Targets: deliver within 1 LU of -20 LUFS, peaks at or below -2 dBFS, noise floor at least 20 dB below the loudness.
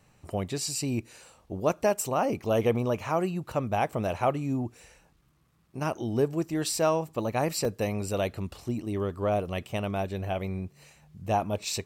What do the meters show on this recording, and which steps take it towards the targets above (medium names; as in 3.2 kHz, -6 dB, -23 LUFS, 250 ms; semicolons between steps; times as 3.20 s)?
dropouts 1; longest dropout 3.1 ms; loudness -29.5 LUFS; peak level -12.5 dBFS; loudness target -20.0 LUFS
-> interpolate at 7.65 s, 3.1 ms; trim +9.5 dB